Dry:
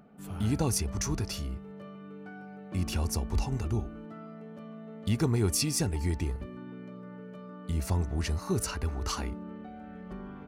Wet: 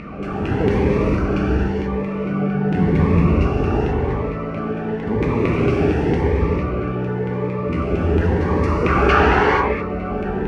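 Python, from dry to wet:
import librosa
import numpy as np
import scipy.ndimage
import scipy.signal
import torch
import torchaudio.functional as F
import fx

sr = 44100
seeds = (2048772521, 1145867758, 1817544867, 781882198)

y = fx.bin_compress(x, sr, power=0.4)
y = fx.peak_eq(y, sr, hz=150.0, db=14.0, octaves=0.74, at=(2.27, 3.03))
y = fx.filter_lfo_lowpass(y, sr, shape='saw_down', hz=4.4, low_hz=370.0, high_hz=2400.0, q=5.6)
y = fx.peak_eq(y, sr, hz=1600.0, db=14.0, octaves=2.9, at=(8.82, 9.4))
y = fx.rev_gated(y, sr, seeds[0], gate_ms=500, shape='flat', drr_db=-5.5)
y = fx.notch_cascade(y, sr, direction='rising', hz=0.91)
y = F.gain(torch.from_numpy(y), -1.5).numpy()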